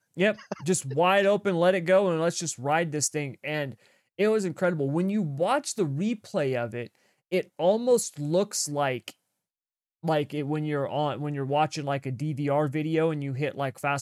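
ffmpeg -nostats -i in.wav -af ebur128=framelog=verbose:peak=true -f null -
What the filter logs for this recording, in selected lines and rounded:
Integrated loudness:
  I:         -26.8 LUFS
  Threshold: -37.1 LUFS
Loudness range:
  LRA:         4.7 LU
  Threshold: -47.6 LUFS
  LRA low:   -29.6 LUFS
  LRA high:  -24.9 LUFS
True peak:
  Peak:      -11.5 dBFS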